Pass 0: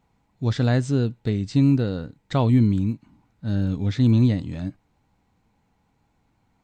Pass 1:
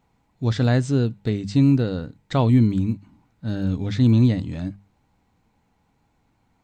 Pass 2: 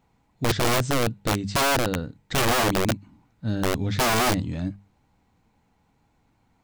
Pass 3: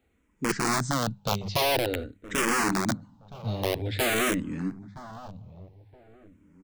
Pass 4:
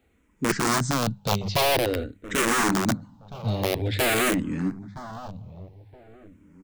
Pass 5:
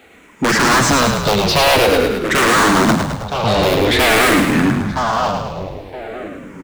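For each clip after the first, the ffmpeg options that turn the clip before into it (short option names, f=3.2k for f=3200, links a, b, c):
-af "bandreject=f=50:t=h:w=6,bandreject=f=100:t=h:w=6,bandreject=f=150:t=h:w=6,bandreject=f=200:t=h:w=6,volume=1.5dB"
-af "aeval=exprs='(mod(6.31*val(0)+1,2)-1)/6.31':c=same"
-filter_complex "[0:a]asplit=2[a][b];[b]adelay=969,lowpass=f=1k:p=1,volume=-15.5dB,asplit=2[c][d];[d]adelay=969,lowpass=f=1k:p=1,volume=0.32,asplit=2[e][f];[f]adelay=969,lowpass=f=1k:p=1,volume=0.32[g];[a][c][e][g]amix=inputs=4:normalize=0,acrossover=split=110|2100[h][i][j];[h]acompressor=threshold=-38dB:ratio=6[k];[k][i][j]amix=inputs=3:normalize=0,asplit=2[l][m];[m]afreqshift=-0.49[n];[l][n]amix=inputs=2:normalize=1"
-af "aeval=exprs='clip(val(0),-1,0.0596)':c=same,volume=4.5dB"
-filter_complex "[0:a]asplit=2[a][b];[b]highpass=f=720:p=1,volume=33dB,asoftclip=type=tanh:threshold=-5.5dB[c];[a][c]amix=inputs=2:normalize=0,lowpass=f=5.2k:p=1,volume=-6dB,asplit=2[d][e];[e]asplit=7[f][g][h][i][j][k][l];[f]adelay=106,afreqshift=-39,volume=-5dB[m];[g]adelay=212,afreqshift=-78,volume=-10.2dB[n];[h]adelay=318,afreqshift=-117,volume=-15.4dB[o];[i]adelay=424,afreqshift=-156,volume=-20.6dB[p];[j]adelay=530,afreqshift=-195,volume=-25.8dB[q];[k]adelay=636,afreqshift=-234,volume=-31dB[r];[l]adelay=742,afreqshift=-273,volume=-36.2dB[s];[m][n][o][p][q][r][s]amix=inputs=7:normalize=0[t];[d][t]amix=inputs=2:normalize=0,volume=-1dB"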